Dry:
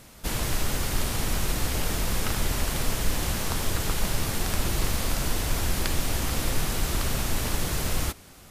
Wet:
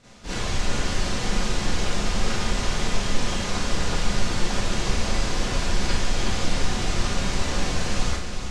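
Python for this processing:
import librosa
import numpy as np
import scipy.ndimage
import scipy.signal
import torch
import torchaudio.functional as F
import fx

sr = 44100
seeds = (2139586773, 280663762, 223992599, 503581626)

p1 = scipy.signal.sosfilt(scipy.signal.butter(4, 7100.0, 'lowpass', fs=sr, output='sos'), x)
p2 = p1 + fx.echo_single(p1, sr, ms=369, db=-6.0, dry=0)
p3 = fx.rev_schroeder(p2, sr, rt60_s=0.4, comb_ms=31, drr_db=-9.5)
y = p3 * librosa.db_to_amplitude(-7.5)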